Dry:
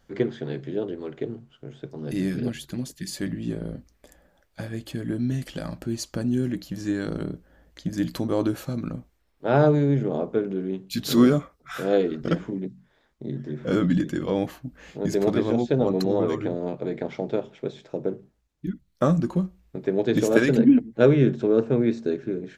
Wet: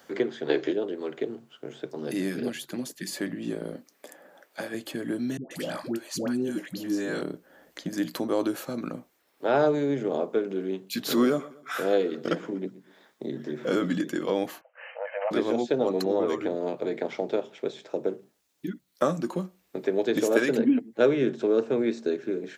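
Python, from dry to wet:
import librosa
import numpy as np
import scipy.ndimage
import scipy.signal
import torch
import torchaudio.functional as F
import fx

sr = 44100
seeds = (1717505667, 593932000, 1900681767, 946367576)

y = fx.spec_box(x, sr, start_s=0.49, length_s=0.23, low_hz=270.0, high_hz=7300.0, gain_db=12)
y = fx.highpass(y, sr, hz=180.0, slope=12, at=(3.75, 4.74))
y = fx.dispersion(y, sr, late='highs', ms=139.0, hz=640.0, at=(5.37, 7.22))
y = fx.echo_feedback(y, sr, ms=121, feedback_pct=33, wet_db=-20.5, at=(11.26, 14.02))
y = fx.brickwall_bandpass(y, sr, low_hz=480.0, high_hz=3100.0, at=(14.61, 15.31))
y = scipy.signal.sosfilt(scipy.signal.butter(2, 310.0, 'highpass', fs=sr, output='sos'), y)
y = fx.high_shelf(y, sr, hz=11000.0, db=8.0)
y = fx.band_squash(y, sr, depth_pct=40)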